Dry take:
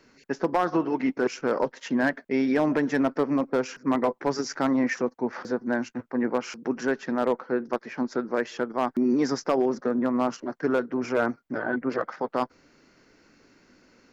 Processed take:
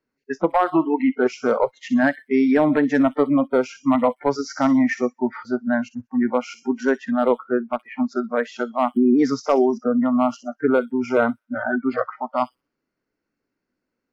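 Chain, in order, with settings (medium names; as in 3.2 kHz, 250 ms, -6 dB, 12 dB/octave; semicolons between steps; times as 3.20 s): treble shelf 3.1 kHz -10 dB; feedback echo behind a high-pass 63 ms, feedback 62%, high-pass 3.7 kHz, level -7.5 dB; spectral noise reduction 28 dB; trim +7 dB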